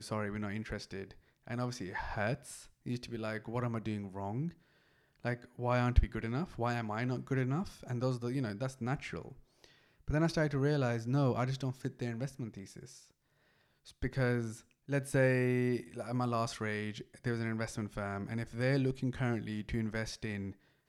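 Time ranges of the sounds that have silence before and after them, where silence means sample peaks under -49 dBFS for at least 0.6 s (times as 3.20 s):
5.25–13.00 s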